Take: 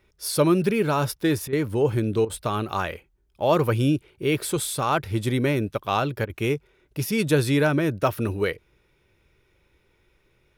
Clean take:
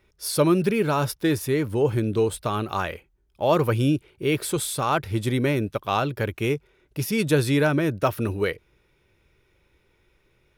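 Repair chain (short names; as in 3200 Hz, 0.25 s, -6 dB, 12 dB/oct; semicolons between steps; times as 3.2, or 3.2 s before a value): interpolate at 1.48/2.25/6.25, 46 ms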